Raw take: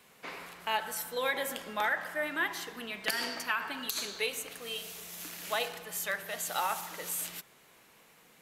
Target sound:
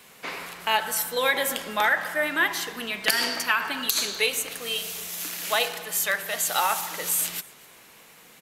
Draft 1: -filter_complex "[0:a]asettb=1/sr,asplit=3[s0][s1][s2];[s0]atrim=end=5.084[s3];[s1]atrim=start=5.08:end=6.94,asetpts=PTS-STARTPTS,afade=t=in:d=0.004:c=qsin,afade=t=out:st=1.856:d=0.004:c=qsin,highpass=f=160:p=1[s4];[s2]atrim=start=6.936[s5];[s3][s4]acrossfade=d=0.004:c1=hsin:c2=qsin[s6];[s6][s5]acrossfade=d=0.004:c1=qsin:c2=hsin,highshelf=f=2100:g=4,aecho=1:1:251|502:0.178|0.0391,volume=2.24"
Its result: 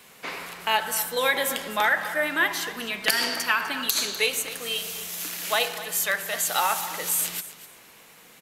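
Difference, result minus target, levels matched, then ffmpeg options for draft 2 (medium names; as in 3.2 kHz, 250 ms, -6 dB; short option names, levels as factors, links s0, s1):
echo-to-direct +9 dB
-filter_complex "[0:a]asettb=1/sr,asplit=3[s0][s1][s2];[s0]atrim=end=5.084[s3];[s1]atrim=start=5.08:end=6.94,asetpts=PTS-STARTPTS,afade=t=in:d=0.004:c=qsin,afade=t=out:st=1.856:d=0.004:c=qsin,highpass=f=160:p=1[s4];[s2]atrim=start=6.936[s5];[s3][s4]acrossfade=d=0.004:c1=hsin:c2=qsin[s6];[s6][s5]acrossfade=d=0.004:c1=qsin:c2=hsin,highshelf=f=2100:g=4,aecho=1:1:251|502:0.0631|0.0139,volume=2.24"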